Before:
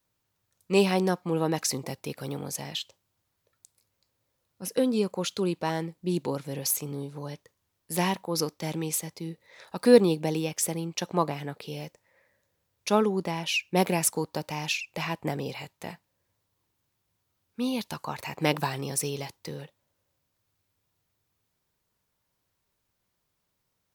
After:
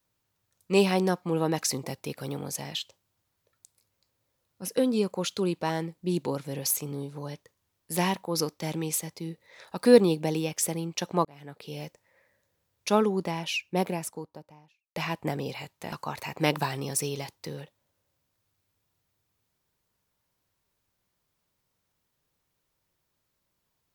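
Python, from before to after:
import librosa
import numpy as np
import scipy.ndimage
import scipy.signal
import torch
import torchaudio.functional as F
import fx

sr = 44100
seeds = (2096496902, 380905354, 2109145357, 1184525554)

y = fx.studio_fade_out(x, sr, start_s=13.13, length_s=1.83)
y = fx.edit(y, sr, fx.fade_in_span(start_s=11.25, length_s=0.58),
    fx.cut(start_s=15.92, length_s=2.01), tone=tone)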